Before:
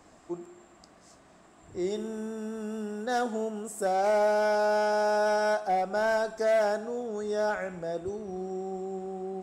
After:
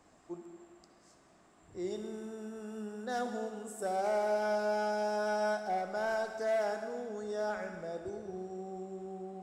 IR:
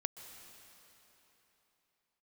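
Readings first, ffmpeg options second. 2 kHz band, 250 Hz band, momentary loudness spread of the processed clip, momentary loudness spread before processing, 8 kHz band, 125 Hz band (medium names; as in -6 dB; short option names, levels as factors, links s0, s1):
-7.0 dB, -6.0 dB, 12 LU, 11 LU, -6.5 dB, no reading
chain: -filter_complex "[1:a]atrim=start_sample=2205,asetrate=88200,aresample=44100[s0];[0:a][s0]afir=irnorm=-1:irlink=0"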